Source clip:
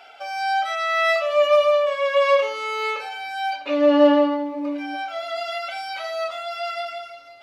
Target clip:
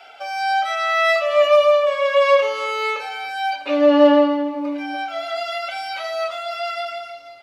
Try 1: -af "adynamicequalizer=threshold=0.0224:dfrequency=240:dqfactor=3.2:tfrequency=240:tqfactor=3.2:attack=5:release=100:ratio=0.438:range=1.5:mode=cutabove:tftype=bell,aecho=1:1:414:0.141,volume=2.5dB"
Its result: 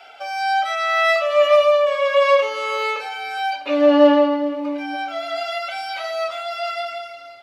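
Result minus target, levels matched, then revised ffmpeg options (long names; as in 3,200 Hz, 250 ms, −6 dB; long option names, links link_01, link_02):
echo 121 ms late
-af "adynamicequalizer=threshold=0.0224:dfrequency=240:dqfactor=3.2:tfrequency=240:tqfactor=3.2:attack=5:release=100:ratio=0.438:range=1.5:mode=cutabove:tftype=bell,aecho=1:1:293:0.141,volume=2.5dB"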